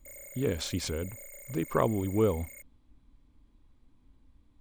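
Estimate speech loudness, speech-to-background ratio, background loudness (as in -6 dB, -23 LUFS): -31.5 LUFS, 14.0 dB, -45.5 LUFS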